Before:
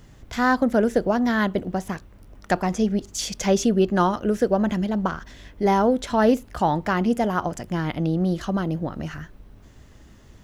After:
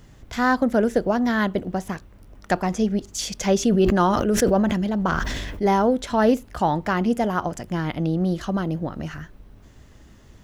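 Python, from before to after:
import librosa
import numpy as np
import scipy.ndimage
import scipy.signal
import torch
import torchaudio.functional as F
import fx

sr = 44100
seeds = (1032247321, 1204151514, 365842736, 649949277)

y = fx.sustainer(x, sr, db_per_s=26.0, at=(3.6, 5.76))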